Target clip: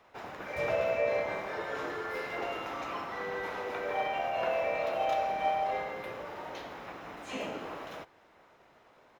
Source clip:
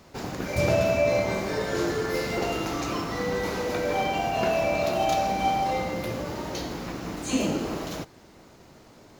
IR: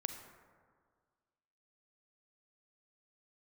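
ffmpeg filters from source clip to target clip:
-filter_complex "[0:a]acrossover=split=530 3100:gain=0.158 1 0.2[link_01][link_02][link_03];[link_01][link_02][link_03]amix=inputs=3:normalize=0,asplit=2[link_04][link_05];[link_05]asetrate=35002,aresample=44100,atempo=1.25992,volume=-7dB[link_06];[link_04][link_06]amix=inputs=2:normalize=0,equalizer=frequency=6600:width=1.5:gain=-2.5,bandreject=frequency=4500:width=12,volume=-4dB"

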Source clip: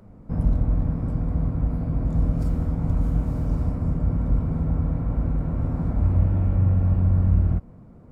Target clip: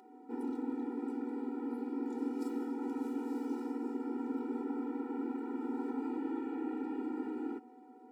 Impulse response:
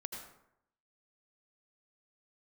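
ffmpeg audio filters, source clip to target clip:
-af "aeval=exprs='val(0)+0.00316*sin(2*PI*750*n/s)':channel_layout=same,tremolo=f=220:d=0.261,afftfilt=real='re*eq(mod(floor(b*sr/1024/250),2),1)':imag='im*eq(mod(floor(b*sr/1024/250),2),1)':win_size=1024:overlap=0.75"

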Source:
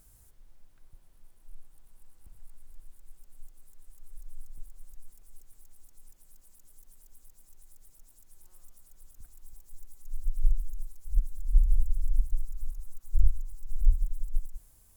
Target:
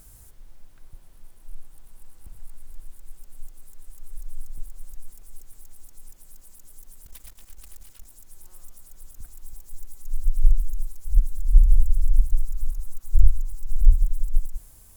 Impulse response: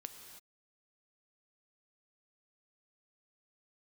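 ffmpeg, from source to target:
-filter_complex "[0:a]asettb=1/sr,asplit=3[link_01][link_02][link_03];[link_01]atrim=end=7.064[link_04];[link_02]atrim=start=7.06:end=8.06,asetpts=PTS-STARTPTS,afade=type=in:duration=0.004:curve=qsin,afade=type=out:start_time=0.996:duration=0.004:curve=qsin,aeval=exprs='0.0106*(cos(1*acos(clip(val(0)/0.0106,-1,1)))-cos(1*PI/2))+0.00376*(cos(3*acos(clip(val(0)/0.0106,-1,1)))-cos(3*PI/2))+0.00266*(cos(6*acos(clip(val(0)/0.0106,-1,1)))-cos(6*PI/2))':channel_layout=same[link_05];[link_03]atrim=start=8.056[link_06];[link_04][link_05]acrossfade=duration=0.004:curve1=hsin:curve2=qsin[link_07];[link_07][link_06]acrossfade=duration=0.004:curve1=qsin:curve2=hsin,asplit=2[link_08][link_09];[link_09]asoftclip=type=tanh:threshold=-22.5dB,volume=-8.5dB[link_10];[link_08][link_10]amix=inputs=2:normalize=0,volume=6.5dB"

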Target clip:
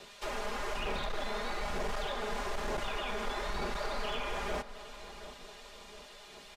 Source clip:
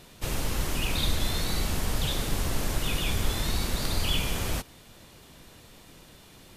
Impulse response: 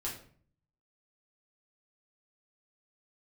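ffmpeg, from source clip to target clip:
-filter_complex "[0:a]acrossover=split=450 7600:gain=0.0891 1 0.158[link_01][link_02][link_03];[link_01][link_02][link_03]amix=inputs=3:normalize=0,aecho=1:1:4.9:0.95,acrossover=split=650|1900[link_04][link_05][link_06];[link_04]aphaser=in_gain=1:out_gain=1:delay=4.7:decay=0.63:speed=1.1:type=sinusoidal[link_07];[link_06]acompressor=threshold=-46dB:ratio=12[link_08];[link_07][link_05][link_08]amix=inputs=3:normalize=0,volume=30dB,asoftclip=hard,volume=-30dB,asplit=2[link_09][link_10];[link_10]adelay=719,lowpass=frequency=2000:poles=1,volume=-13dB,asplit=2[link_11][link_12];[link_12]adelay=719,lowpass=frequency=2000:poles=1,volume=0.49,asplit=2[link_13][link_14];[link_14]adelay=719,lowpass=frequency=2000:poles=1,volume=0.49,asplit=2[link_15][link_16];[link_16]adelay=719,lowpass=frequency=2000:poles=1,volume=0.49,asplit=2[link_17][link_18];[link_18]adelay=719,lowpass=frequency=2000:poles=1,volume=0.49[link_19];[link_11][link_13][link_15][link_17][link_19]amix=inputs=5:normalize=0[link_20];[link_09][link_20]amix=inputs=2:normalize=0"

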